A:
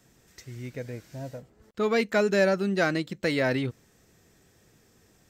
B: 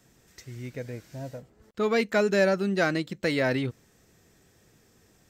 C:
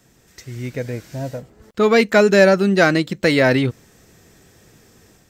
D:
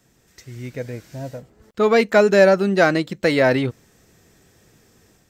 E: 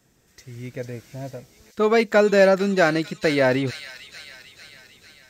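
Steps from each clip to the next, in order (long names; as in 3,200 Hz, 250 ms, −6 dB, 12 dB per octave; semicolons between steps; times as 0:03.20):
no processing that can be heard
automatic gain control gain up to 5 dB; level +5.5 dB
dynamic equaliser 720 Hz, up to +5 dB, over −26 dBFS, Q 0.71; level −4.5 dB
delay with a high-pass on its return 448 ms, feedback 60%, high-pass 3,300 Hz, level −3.5 dB; level −2.5 dB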